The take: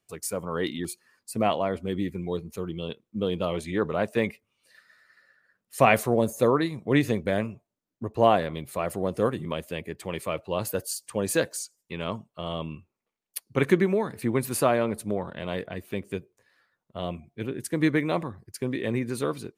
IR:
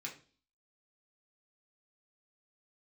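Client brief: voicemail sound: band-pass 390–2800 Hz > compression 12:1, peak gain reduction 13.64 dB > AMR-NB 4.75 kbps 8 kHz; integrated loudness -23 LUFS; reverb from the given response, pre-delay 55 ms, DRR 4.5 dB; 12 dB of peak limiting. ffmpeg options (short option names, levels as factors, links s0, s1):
-filter_complex "[0:a]alimiter=limit=0.15:level=0:latency=1,asplit=2[s0][s1];[1:a]atrim=start_sample=2205,adelay=55[s2];[s1][s2]afir=irnorm=-1:irlink=0,volume=0.668[s3];[s0][s3]amix=inputs=2:normalize=0,highpass=390,lowpass=2800,acompressor=threshold=0.0158:ratio=12,volume=11.2" -ar 8000 -c:a libopencore_amrnb -b:a 4750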